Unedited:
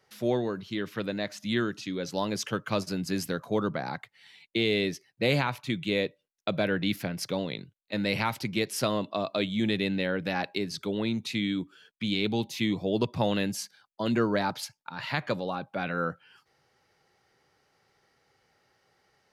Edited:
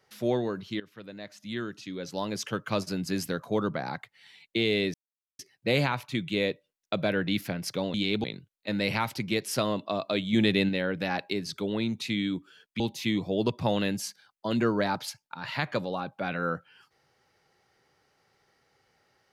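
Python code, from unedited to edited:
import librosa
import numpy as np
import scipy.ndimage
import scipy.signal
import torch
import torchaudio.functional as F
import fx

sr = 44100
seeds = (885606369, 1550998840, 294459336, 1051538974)

y = fx.edit(x, sr, fx.fade_in_from(start_s=0.8, length_s=1.99, floor_db=-17.0),
    fx.insert_silence(at_s=4.94, length_s=0.45),
    fx.clip_gain(start_s=9.58, length_s=0.36, db=4.0),
    fx.move(start_s=12.05, length_s=0.3, to_s=7.49), tone=tone)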